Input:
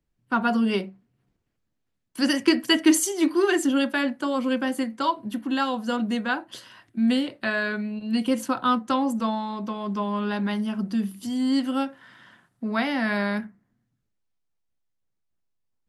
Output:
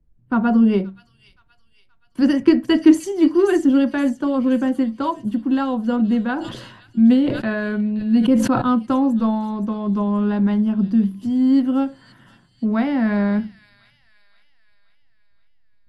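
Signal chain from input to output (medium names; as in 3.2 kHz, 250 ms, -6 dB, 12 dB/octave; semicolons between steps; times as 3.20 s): tilt EQ -4 dB/octave; feedback echo behind a high-pass 524 ms, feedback 50%, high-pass 4 kHz, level -7.5 dB; 6.23–8.62 s: decay stretcher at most 54 dB/s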